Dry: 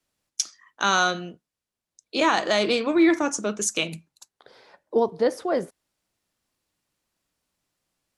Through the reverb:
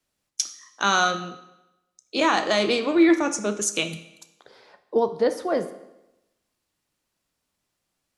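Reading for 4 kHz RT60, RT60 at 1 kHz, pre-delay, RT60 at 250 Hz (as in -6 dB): 0.85 s, 0.95 s, 15 ms, 0.95 s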